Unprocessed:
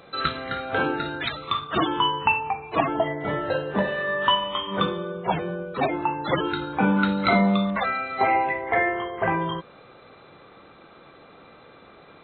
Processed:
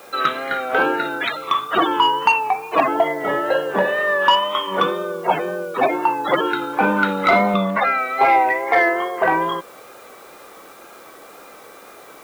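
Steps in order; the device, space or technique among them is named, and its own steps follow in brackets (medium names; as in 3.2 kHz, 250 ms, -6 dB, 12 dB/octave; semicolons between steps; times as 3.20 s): tape answering machine (band-pass 350–2900 Hz; saturation -12.5 dBFS, distortion -22 dB; wow and flutter; white noise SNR 30 dB); 7.54–7.98 s: tone controls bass +6 dB, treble -4 dB; trim +8 dB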